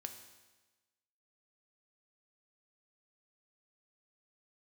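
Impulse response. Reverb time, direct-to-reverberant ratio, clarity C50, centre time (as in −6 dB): 1.2 s, 6.0 dB, 8.5 dB, 22 ms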